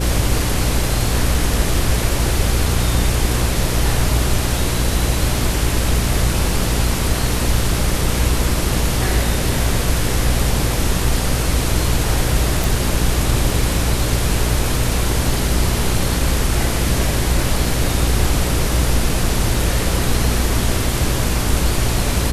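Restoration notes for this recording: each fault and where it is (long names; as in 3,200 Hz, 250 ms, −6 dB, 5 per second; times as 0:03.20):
mains hum 60 Hz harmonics 8 −21 dBFS
0:12.64: click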